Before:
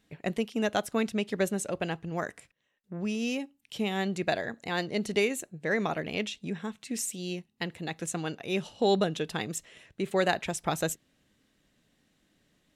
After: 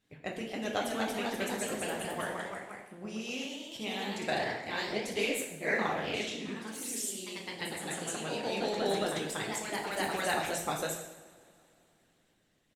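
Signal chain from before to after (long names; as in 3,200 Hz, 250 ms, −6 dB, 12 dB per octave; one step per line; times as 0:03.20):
0:06.70–0:07.29: one scale factor per block 7 bits
far-end echo of a speakerphone 110 ms, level −14 dB
coupled-rooms reverb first 0.83 s, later 3.2 s, from −21 dB, DRR −2.5 dB
harmonic and percussive parts rebalanced harmonic −10 dB
delay with pitch and tempo change per echo 288 ms, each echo +1 semitone, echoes 3
level −4 dB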